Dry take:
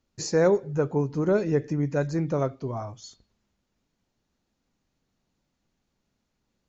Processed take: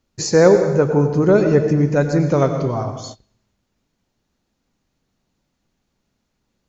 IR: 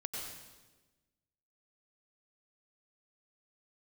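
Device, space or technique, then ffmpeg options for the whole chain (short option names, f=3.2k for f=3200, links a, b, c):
keyed gated reverb: -filter_complex "[0:a]asettb=1/sr,asplit=3[a][b][c];[a]atrim=end=2.314[d];[b]atrim=start=2.31:end=2.75,asetpts=PTS-STARTPTS,afade=t=in:d=0.004:c=qsin,afade=t=out:st=0.436:d=0.004:c=qsin,equalizer=f=3.9k:w=0.56:g=5.5[e];[c]atrim=start=2.746[f];[d][e]acrossfade=d=0.004:c1=hsin:c2=qsin[g];[g][f]acrossfade=d=0.004:c1=qsin:c2=hsin,asplit=3[h][i][j];[1:a]atrim=start_sample=2205[k];[i][k]afir=irnorm=-1:irlink=0[l];[j]apad=whole_len=294701[m];[l][m]sidechaingate=range=-28dB:threshold=-47dB:ratio=16:detection=peak,volume=-1.5dB[n];[h][n]amix=inputs=2:normalize=0,volume=5dB"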